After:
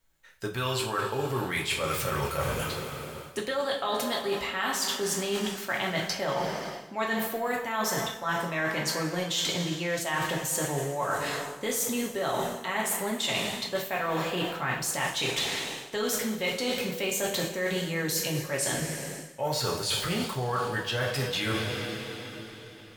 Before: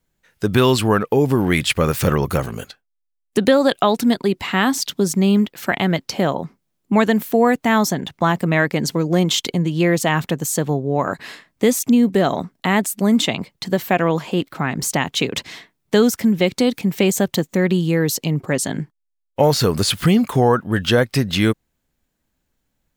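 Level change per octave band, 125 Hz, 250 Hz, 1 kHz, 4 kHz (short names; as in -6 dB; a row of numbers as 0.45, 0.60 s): -14.0, -17.0, -8.5, -6.0 dB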